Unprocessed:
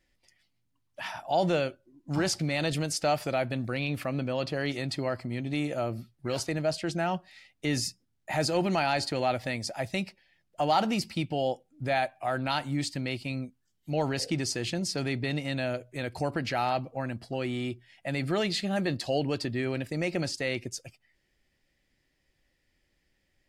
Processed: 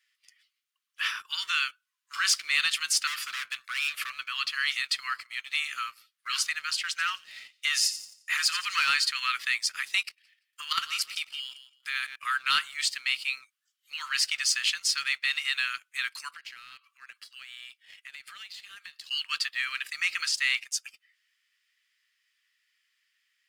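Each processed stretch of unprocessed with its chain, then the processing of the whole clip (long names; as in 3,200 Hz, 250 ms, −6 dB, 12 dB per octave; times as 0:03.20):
0:03.07–0:04.10: high-pass filter 320 Hz 24 dB per octave + gain into a clipping stage and back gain 33 dB
0:06.81–0:08.89: hard clipping −21 dBFS + delay with a high-pass on its return 87 ms, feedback 47%, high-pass 3,900 Hz, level −11 dB
0:10.01–0:12.16: high-shelf EQ 6,900 Hz +6.5 dB + repeating echo 169 ms, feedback 22%, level −13 dB + output level in coarse steps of 11 dB
0:16.33–0:19.11: high-pass filter 1,300 Hz + downward compressor 12 to 1, threshold −48 dBFS
whole clip: Butterworth high-pass 1,100 Hz 96 dB per octave; parametric band 3,000 Hz +4.5 dB 0.49 octaves; leveller curve on the samples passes 1; level +4 dB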